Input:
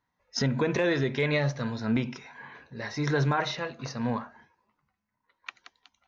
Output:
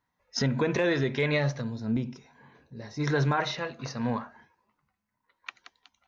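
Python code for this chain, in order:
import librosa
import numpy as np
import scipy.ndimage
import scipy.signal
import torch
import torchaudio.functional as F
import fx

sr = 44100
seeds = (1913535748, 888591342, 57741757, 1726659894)

y = fx.peak_eq(x, sr, hz=1800.0, db=-14.0, octaves=2.9, at=(1.6, 2.99), fade=0.02)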